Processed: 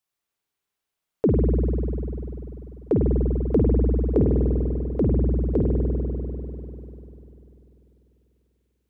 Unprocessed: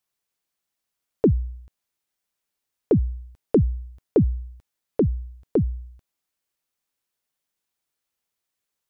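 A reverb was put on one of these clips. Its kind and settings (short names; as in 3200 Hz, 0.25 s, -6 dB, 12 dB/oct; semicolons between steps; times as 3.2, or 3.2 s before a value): spring tank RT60 3.5 s, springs 49 ms, chirp 30 ms, DRR -2.5 dB; gain -3 dB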